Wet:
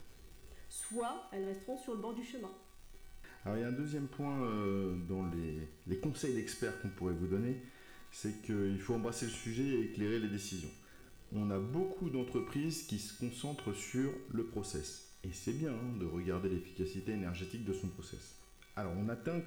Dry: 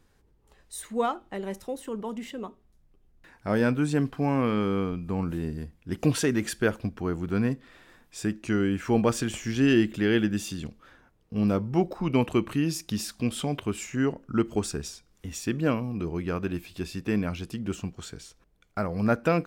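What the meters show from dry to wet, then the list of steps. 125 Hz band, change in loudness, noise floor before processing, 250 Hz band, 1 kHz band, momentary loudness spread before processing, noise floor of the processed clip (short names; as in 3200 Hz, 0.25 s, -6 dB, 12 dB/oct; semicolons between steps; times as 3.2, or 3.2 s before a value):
-11.0 dB, -12.0 dB, -64 dBFS, -12.0 dB, -13.5 dB, 13 LU, -58 dBFS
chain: compressor, threshold -24 dBFS, peak gain reduction 8 dB; rotary speaker horn 0.85 Hz; bell 100 Hz -4.5 dB 2.8 oct; upward compressor, threshold -43 dBFS; soft clip -23 dBFS, distortion -20 dB; crackle 330/s -43 dBFS; low shelf 290 Hz +8.5 dB; resonator 380 Hz, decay 0.77 s, mix 90%; non-linear reverb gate 0.25 s falling, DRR 10 dB; gain +10 dB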